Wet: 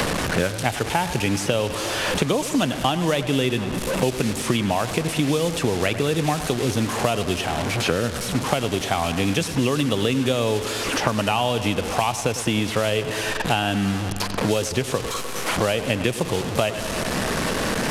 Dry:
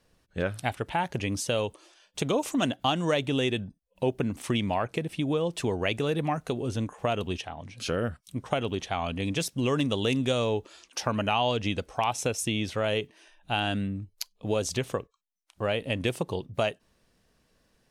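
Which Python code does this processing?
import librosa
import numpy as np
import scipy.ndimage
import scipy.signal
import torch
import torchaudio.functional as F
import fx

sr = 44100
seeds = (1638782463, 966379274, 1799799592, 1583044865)

y = fx.delta_mod(x, sr, bps=64000, step_db=-31.5)
y = fx.echo_bbd(y, sr, ms=101, stages=4096, feedback_pct=65, wet_db=-14.5)
y = fx.band_squash(y, sr, depth_pct=100)
y = y * 10.0 ** (5.0 / 20.0)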